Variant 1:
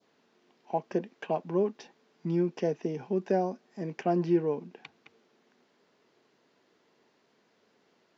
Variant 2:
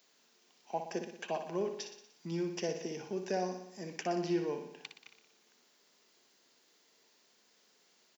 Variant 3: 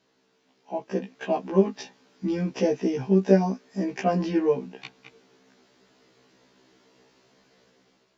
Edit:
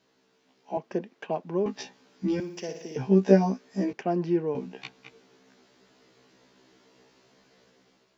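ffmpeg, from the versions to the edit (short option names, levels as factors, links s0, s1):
-filter_complex "[0:a]asplit=2[s0][s1];[2:a]asplit=4[s2][s3][s4][s5];[s2]atrim=end=0.772[s6];[s0]atrim=start=0.768:end=1.662[s7];[s3]atrim=start=1.658:end=2.402[s8];[1:a]atrim=start=2.398:end=2.962[s9];[s4]atrim=start=2.958:end=3.932[s10];[s1]atrim=start=3.928:end=4.552[s11];[s5]atrim=start=4.548[s12];[s6][s7]acrossfade=d=0.004:c1=hsin:c2=hsin[s13];[s13][s8]acrossfade=d=0.004:c1=hsin:c2=hsin[s14];[s14][s9]acrossfade=d=0.004:c1=hsin:c2=hsin[s15];[s15][s10]acrossfade=d=0.004:c1=hsin:c2=hsin[s16];[s16][s11]acrossfade=d=0.004:c1=hsin:c2=hsin[s17];[s17][s12]acrossfade=d=0.004:c1=hsin:c2=hsin"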